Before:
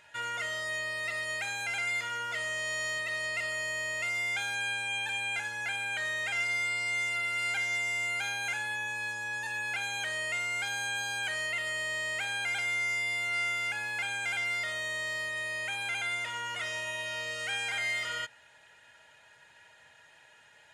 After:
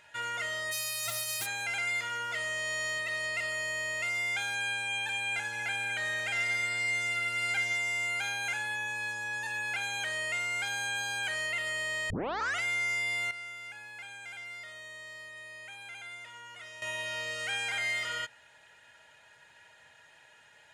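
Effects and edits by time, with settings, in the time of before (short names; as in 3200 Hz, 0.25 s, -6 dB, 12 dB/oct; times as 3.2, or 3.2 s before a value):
0.71–1.45 spectral whitening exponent 0.1
5.09–7.73 split-band echo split 2500 Hz, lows 0.231 s, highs 0.166 s, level -12.5 dB
12.1 tape start 0.52 s
13.31–16.82 gain -11.5 dB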